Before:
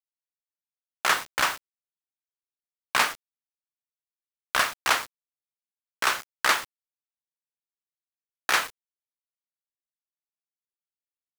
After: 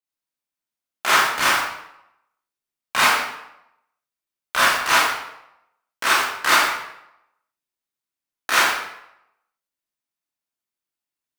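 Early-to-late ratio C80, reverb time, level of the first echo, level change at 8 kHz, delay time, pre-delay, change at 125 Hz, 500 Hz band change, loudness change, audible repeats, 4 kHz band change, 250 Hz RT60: 3.0 dB, 0.80 s, none, +6.5 dB, none, 23 ms, +7.0 dB, +7.0 dB, +6.5 dB, none, +7.0 dB, 0.70 s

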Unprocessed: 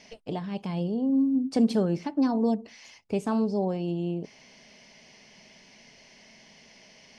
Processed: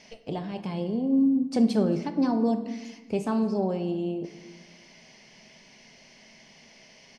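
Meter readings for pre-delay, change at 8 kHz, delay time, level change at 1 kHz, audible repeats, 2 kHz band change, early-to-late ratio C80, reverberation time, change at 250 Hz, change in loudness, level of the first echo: 5 ms, n/a, 0.225 s, +0.5 dB, 1, +0.5 dB, 12.0 dB, 1.3 s, +1.0 dB, +0.5 dB, -22.5 dB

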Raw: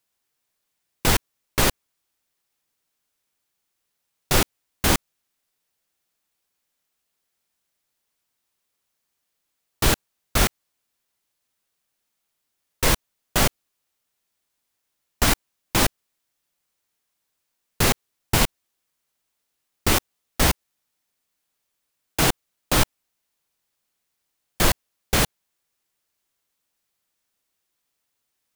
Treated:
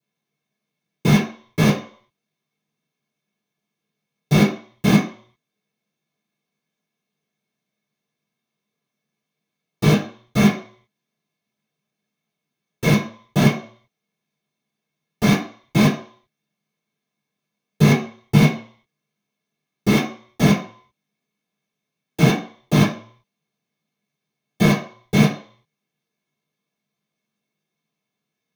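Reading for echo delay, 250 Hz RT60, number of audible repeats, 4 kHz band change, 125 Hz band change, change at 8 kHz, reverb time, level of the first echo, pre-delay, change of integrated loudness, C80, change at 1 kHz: none, 0.40 s, none, -3.5 dB, +9.5 dB, -8.0 dB, 0.50 s, none, 3 ms, +3.5 dB, 11.5 dB, -0.5 dB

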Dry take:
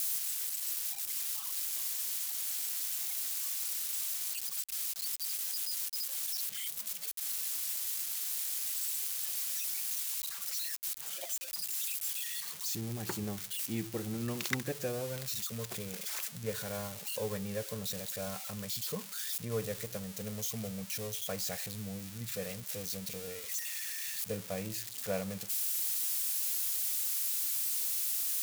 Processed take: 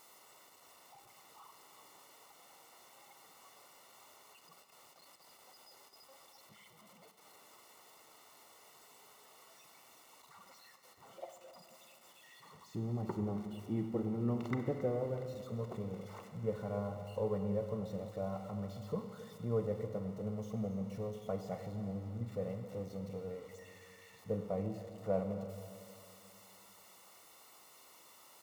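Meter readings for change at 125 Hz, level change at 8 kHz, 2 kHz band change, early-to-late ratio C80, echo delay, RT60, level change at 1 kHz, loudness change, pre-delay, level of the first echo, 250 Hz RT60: +1.5 dB, -26.5 dB, -13.0 dB, 7.5 dB, 0.271 s, 2.5 s, +0.5 dB, -6.0 dB, 31 ms, -16.5 dB, 2.6 s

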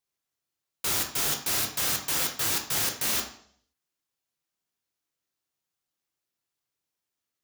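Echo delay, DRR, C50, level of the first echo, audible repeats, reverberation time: none, 2.0 dB, 8.0 dB, none, none, 0.60 s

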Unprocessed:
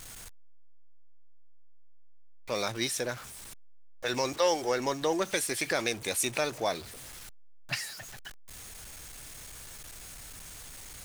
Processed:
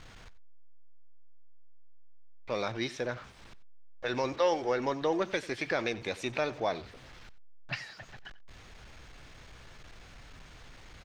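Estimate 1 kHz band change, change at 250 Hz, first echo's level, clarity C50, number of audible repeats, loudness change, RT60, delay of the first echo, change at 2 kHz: -1.0 dB, 0.0 dB, -18.5 dB, none, 1, -2.0 dB, none, 91 ms, -2.0 dB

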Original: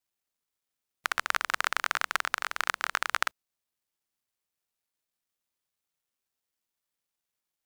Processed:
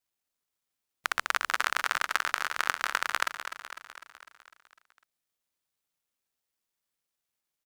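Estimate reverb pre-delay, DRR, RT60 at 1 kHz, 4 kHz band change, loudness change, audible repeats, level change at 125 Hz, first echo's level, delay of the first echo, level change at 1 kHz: none, none, none, +0.5 dB, +0.5 dB, 6, n/a, -10.0 dB, 0.251 s, +0.5 dB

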